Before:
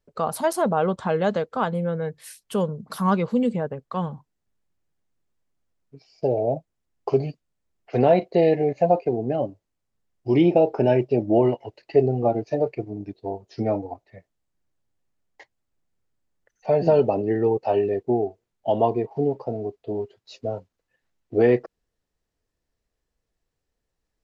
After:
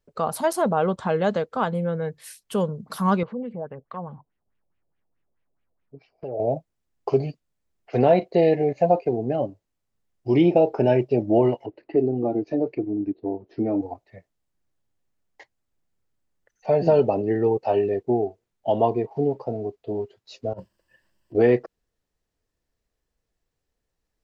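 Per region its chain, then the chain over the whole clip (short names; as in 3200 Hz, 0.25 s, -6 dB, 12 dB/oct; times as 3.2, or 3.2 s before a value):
3.23–6.4 compressor 2:1, threshold -39 dBFS + LFO low-pass sine 4.7 Hz 580–2800 Hz
11.66–13.81 low-pass opened by the level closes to 1700 Hz, open at -14.5 dBFS + compressor 1.5:1, threshold -40 dBFS + bell 300 Hz +14.5 dB 0.86 oct
20.53–21.35 ripple EQ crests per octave 1.3, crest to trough 10 dB + negative-ratio compressor -37 dBFS, ratio -0.5
whole clip: dry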